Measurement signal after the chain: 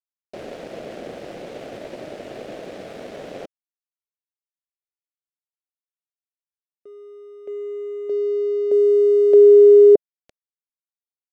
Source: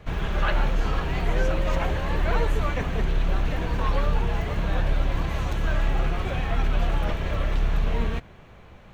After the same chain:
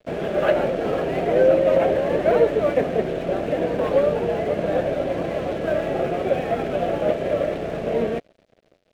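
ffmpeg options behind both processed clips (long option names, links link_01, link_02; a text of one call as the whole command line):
ffmpeg -i in.wav -af "highpass=270,lowpass=2800,aeval=exprs='sgn(val(0))*max(abs(val(0))-0.00398,0)':channel_layout=same,lowshelf=frequency=770:width_type=q:width=3:gain=7.5,volume=3.5dB" out.wav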